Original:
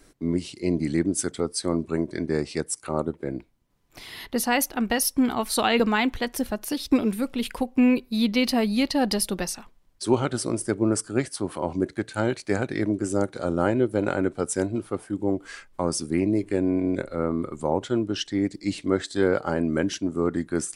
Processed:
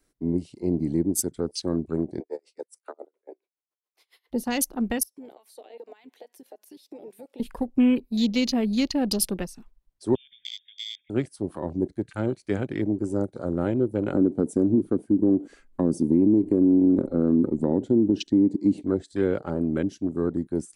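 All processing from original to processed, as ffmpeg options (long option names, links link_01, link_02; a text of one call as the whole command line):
ffmpeg -i in.wav -filter_complex "[0:a]asettb=1/sr,asplit=3[link_01][link_02][link_03];[link_01]atrim=end=2.204[link_04];[link_02]atrim=start=2.2:end=4.32,asetpts=PTS-STARTPTS,afade=type=in:duration=0.004:curve=qsin,afade=type=out:start_time=2.116:duration=0.004:curve=qsin,highpass=frequency=350:width=0.5412,highpass=frequency=350:width=1.3066,afreqshift=51,aeval=exprs='val(0)*pow(10,-30*(0.5-0.5*cos(2*PI*7.2*n/s))/20)':channel_layout=same[link_05];[link_03]atrim=start=4.316[link_06];[link_04][link_05]acrossfade=duration=0.004:curve1=hsin:curve2=qsin[link_07];[link_07][link_06]acrossfade=duration=0.004:curve1=qsin:curve2=hsin,asettb=1/sr,asplit=3[link_08][link_09][link_10];[link_08]atrim=end=5.034[link_11];[link_09]atrim=start=5.03:end=7.4,asetpts=PTS-STARTPTS,afade=type=in:duration=0.004:curve=qsin,afade=type=out:start_time=2.366:duration=0.004:curve=qsin,highpass=frequency=370:width=0.5412,highpass=frequency=370:width=1.3066,equalizer=frequency=1300:width_type=o:width=0.46:gain=-7.5,acompressor=threshold=-38dB:ratio=6:attack=3.2:release=140:knee=1:detection=peak[link_12];[link_10]atrim=start=7.396[link_13];[link_11][link_12]acrossfade=duration=0.004:curve1=hsin:curve2=qsin[link_14];[link_14][link_13]acrossfade=duration=0.004:curve1=qsin:curve2=hsin,asettb=1/sr,asplit=3[link_15][link_16][link_17];[link_15]atrim=end=10.154[link_18];[link_16]atrim=start=10.15:end=11.1,asetpts=PTS-STARTPTS,afade=type=in:duration=0.004:curve=qsin,afade=type=out:start_time=0.946:duration=0.004:curve=qsin,acompressor=threshold=-30dB:ratio=16:attack=3.2:release=140:knee=1:detection=peak,lowpass=frequency=3100:width_type=q:width=0.5098,lowpass=frequency=3100:width_type=q:width=0.6013,lowpass=frequency=3100:width_type=q:width=0.9,lowpass=frequency=3100:width_type=q:width=2.563,afreqshift=-3700,asuperstop=centerf=700:order=20:qfactor=0.55[link_19];[link_17]atrim=start=11.096[link_20];[link_18][link_19]acrossfade=duration=0.004:curve1=hsin:curve2=qsin[link_21];[link_21][link_20]acrossfade=duration=0.004:curve1=qsin:curve2=hsin,asettb=1/sr,asplit=3[link_22][link_23][link_24];[link_22]atrim=end=14.134[link_25];[link_23]atrim=start=14.13:end=18.83,asetpts=PTS-STARTPTS,afade=type=in:duration=0.004:curve=qsin,afade=type=out:start_time=4.696:duration=0.004:curve=qsin,equalizer=frequency=260:width=0.83:gain=14.5,bandreject=frequency=5200:width=13,acompressor=threshold=-15dB:ratio=4:attack=3.2:release=140:knee=1:detection=peak[link_26];[link_24]atrim=start=18.826[link_27];[link_25][link_26]acrossfade=duration=0.004:curve1=hsin:curve2=qsin[link_28];[link_28][link_27]acrossfade=duration=0.004:curve1=qsin:curve2=hsin,afwtdn=0.02,highshelf=frequency=9300:gain=6,acrossover=split=490|3000[link_29][link_30][link_31];[link_30]acompressor=threshold=-43dB:ratio=2[link_32];[link_29][link_32][link_31]amix=inputs=3:normalize=0" out.wav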